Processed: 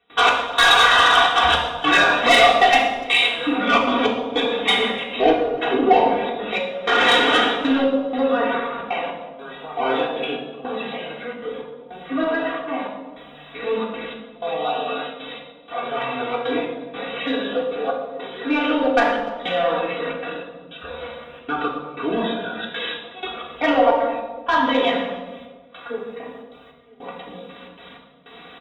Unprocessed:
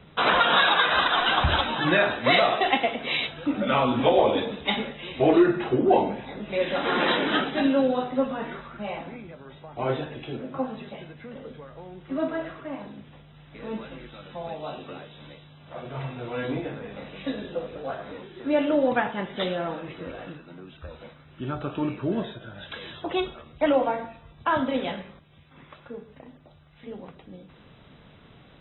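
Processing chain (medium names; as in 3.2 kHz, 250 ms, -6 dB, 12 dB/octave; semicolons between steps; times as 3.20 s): high-pass 760 Hz 6 dB/octave; comb 4.2 ms, depth 83%; in parallel at -3 dB: compression, threshold -33 dBFS, peak gain reduction 18 dB; on the sum: trance gate ".xx...xxxxxxx" 155 bpm -24 dB; saturation -16 dBFS, distortion -14 dB; delay 295 ms -24 dB; reverberation RT60 1.4 s, pre-delay 3 ms, DRR -1.5 dB; trim +4.5 dB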